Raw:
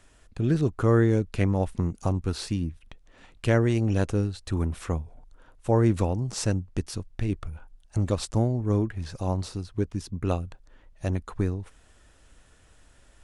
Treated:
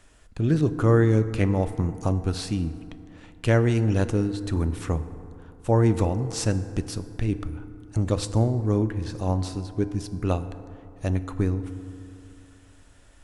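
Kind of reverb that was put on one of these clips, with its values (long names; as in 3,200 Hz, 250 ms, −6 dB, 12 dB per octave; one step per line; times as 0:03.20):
feedback delay network reverb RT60 2.7 s, high-frequency decay 0.4×, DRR 11 dB
level +1.5 dB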